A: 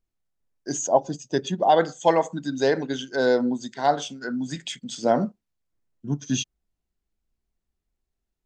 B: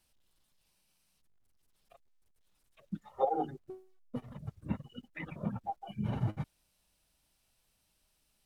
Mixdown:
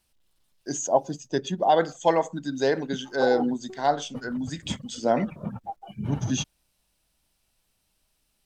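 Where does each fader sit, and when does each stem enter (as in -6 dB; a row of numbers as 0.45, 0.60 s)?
-2.0, +2.5 dB; 0.00, 0.00 s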